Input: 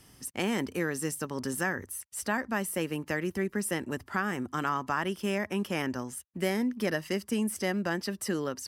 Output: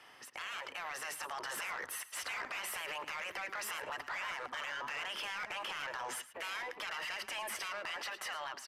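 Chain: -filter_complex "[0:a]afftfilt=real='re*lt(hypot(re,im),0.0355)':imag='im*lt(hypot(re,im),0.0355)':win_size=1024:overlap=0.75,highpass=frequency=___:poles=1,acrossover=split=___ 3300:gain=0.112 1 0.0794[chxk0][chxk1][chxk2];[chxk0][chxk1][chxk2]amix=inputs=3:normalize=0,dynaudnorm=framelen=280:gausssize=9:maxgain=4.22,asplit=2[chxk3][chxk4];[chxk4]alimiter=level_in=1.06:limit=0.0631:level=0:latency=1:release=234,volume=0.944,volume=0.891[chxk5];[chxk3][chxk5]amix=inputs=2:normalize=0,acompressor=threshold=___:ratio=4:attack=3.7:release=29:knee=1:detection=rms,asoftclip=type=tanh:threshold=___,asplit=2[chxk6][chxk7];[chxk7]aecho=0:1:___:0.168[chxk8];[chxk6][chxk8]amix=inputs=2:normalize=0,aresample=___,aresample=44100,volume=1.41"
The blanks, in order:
340, 540, 0.0112, 0.015, 110, 32000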